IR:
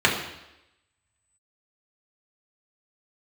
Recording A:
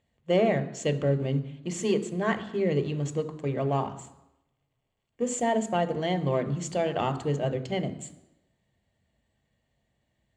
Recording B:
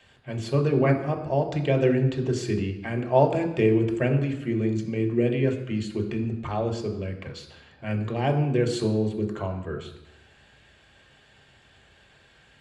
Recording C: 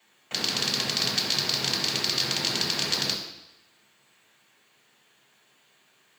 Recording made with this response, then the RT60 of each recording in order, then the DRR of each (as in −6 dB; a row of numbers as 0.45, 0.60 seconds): C; 0.90, 0.90, 0.90 seconds; 8.5, 2.5, −3.5 decibels